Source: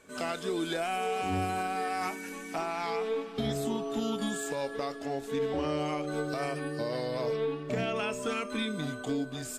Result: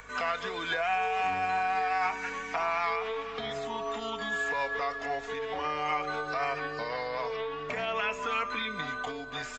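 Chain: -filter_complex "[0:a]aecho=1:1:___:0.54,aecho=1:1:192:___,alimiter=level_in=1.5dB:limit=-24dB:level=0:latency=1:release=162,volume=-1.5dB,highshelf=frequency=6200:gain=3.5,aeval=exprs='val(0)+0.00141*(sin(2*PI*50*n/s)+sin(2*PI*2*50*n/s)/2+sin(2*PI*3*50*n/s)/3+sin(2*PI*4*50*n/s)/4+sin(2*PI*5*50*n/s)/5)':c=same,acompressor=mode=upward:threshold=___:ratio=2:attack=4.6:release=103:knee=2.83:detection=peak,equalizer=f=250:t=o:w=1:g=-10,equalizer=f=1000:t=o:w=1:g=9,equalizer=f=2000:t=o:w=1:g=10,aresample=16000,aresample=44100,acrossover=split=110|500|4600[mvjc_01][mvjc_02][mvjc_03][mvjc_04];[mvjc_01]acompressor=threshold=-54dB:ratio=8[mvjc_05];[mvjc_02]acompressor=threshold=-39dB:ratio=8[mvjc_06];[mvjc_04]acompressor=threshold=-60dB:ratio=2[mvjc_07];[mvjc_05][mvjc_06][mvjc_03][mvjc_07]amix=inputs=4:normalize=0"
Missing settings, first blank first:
4.2, 0.0668, -46dB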